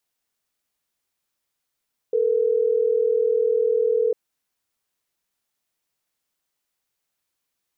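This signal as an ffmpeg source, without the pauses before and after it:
ffmpeg -f lavfi -i "aevalsrc='0.1*(sin(2*PI*440*t)+sin(2*PI*480*t))*clip(min(mod(t,6),2-mod(t,6))/0.005,0,1)':duration=3.12:sample_rate=44100" out.wav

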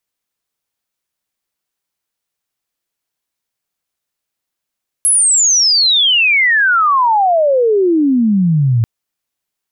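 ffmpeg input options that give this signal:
ffmpeg -f lavfi -i "aevalsrc='pow(10,(-8-1*t/3.79)/20)*sin(2*PI*11000*3.79/log(110/11000)*(exp(log(110/11000)*t/3.79)-1))':duration=3.79:sample_rate=44100" out.wav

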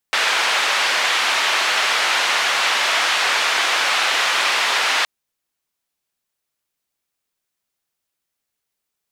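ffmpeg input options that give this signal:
ffmpeg -f lavfi -i "anoisesrc=color=white:duration=4.92:sample_rate=44100:seed=1,highpass=frequency=800,lowpass=frequency=3000,volume=-4.1dB" out.wav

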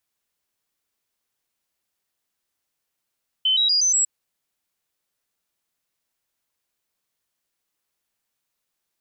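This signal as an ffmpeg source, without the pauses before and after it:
ffmpeg -f lavfi -i "aevalsrc='0.158*clip(min(mod(t,0.12),0.12-mod(t,0.12))/0.005,0,1)*sin(2*PI*3060*pow(2,floor(t/0.12)/3)*mod(t,0.12))':duration=0.6:sample_rate=44100" out.wav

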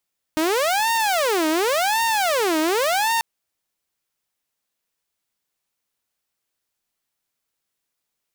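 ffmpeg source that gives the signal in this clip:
ffmpeg -f lavfi -i "aevalsrc='0.168*(2*mod((614.5*t-304.5/(2*PI*0.9)*sin(2*PI*0.9*t)),1)-1)':duration=2.84:sample_rate=44100" out.wav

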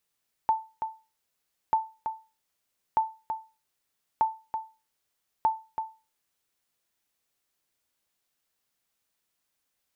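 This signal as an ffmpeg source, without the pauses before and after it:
ffmpeg -f lavfi -i "aevalsrc='0.168*(sin(2*PI*885*mod(t,1.24))*exp(-6.91*mod(t,1.24)/0.3)+0.398*sin(2*PI*885*max(mod(t,1.24)-0.33,0))*exp(-6.91*max(mod(t,1.24)-0.33,0)/0.3))':duration=6.2:sample_rate=44100" out.wav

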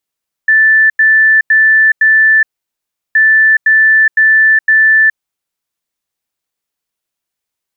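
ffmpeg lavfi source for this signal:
ffmpeg -f lavfi -i "aevalsrc='0.596*sin(2*PI*1760*t)*clip(min(mod(mod(t,2.67),0.51),0.42-mod(mod(t,2.67),0.51))/0.005,0,1)*lt(mod(t,2.67),2.04)':duration=5.34:sample_rate=44100" out.wav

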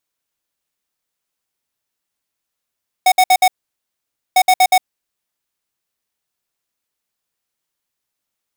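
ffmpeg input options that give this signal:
ffmpeg -f lavfi -i "aevalsrc='0.316*(2*lt(mod(742*t,1),0.5)-1)*clip(min(mod(mod(t,1.3),0.12),0.06-mod(mod(t,1.3),0.12))/0.005,0,1)*lt(mod(t,1.3),0.48)':duration=2.6:sample_rate=44100" out.wav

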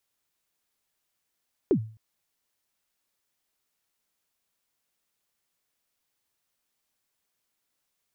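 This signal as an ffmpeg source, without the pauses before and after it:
ffmpeg -f lavfi -i "aevalsrc='0.178*pow(10,-3*t/0.41)*sin(2*PI*(440*0.081/log(110/440)*(exp(log(110/440)*min(t,0.081)/0.081)-1)+110*max(t-0.081,0)))':duration=0.26:sample_rate=44100" out.wav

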